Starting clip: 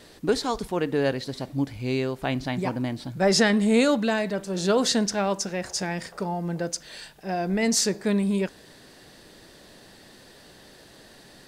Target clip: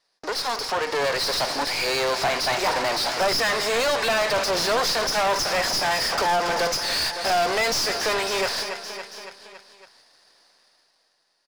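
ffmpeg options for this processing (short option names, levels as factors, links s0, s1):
-filter_complex "[0:a]agate=range=0.00794:threshold=0.00708:ratio=16:detection=peak,highshelf=f=2600:g=12,acompressor=threshold=0.0224:ratio=4,highpass=f=450:w=0.5412,highpass=f=450:w=1.3066,equalizer=f=700:t=q:w=4:g=3,equalizer=f=1000:t=q:w=4:g=4,equalizer=f=3100:t=q:w=4:g=-10,equalizer=f=5100:t=q:w=4:g=10,lowpass=f=6300:w=0.5412,lowpass=f=6300:w=1.3066,asoftclip=type=tanh:threshold=0.0398,dynaudnorm=f=180:g=11:m=5.01,aeval=exprs='max(val(0),0)':c=same,aecho=1:1:279|558|837|1116|1395:0.119|0.0689|0.04|0.0232|0.0134,asplit=2[s0][s1];[s1]highpass=f=720:p=1,volume=25.1,asoftclip=type=tanh:threshold=0.168[s2];[s0][s2]amix=inputs=2:normalize=0,lowpass=f=3200:p=1,volume=0.501,volume=1.12"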